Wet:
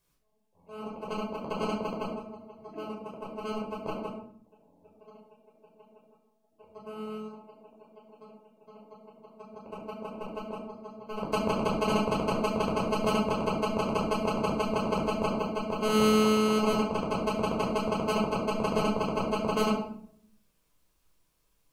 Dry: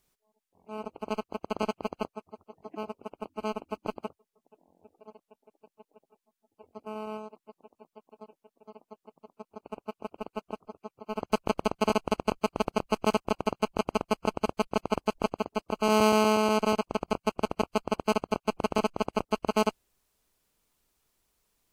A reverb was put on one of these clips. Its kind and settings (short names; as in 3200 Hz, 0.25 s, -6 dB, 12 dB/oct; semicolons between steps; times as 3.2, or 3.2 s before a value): shoebox room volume 950 m³, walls furnished, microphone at 5.3 m; gain -5.5 dB